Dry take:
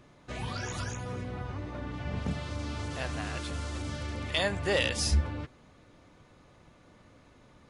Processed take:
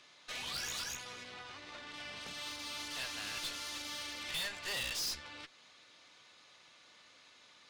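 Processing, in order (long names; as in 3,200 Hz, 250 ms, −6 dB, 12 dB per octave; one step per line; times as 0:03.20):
downward compressor 1.5 to 1, threshold −42 dBFS, peak gain reduction 7.5 dB
resonant band-pass 4,200 Hz, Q 1.3
tube saturation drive 50 dB, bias 0.75
level +15 dB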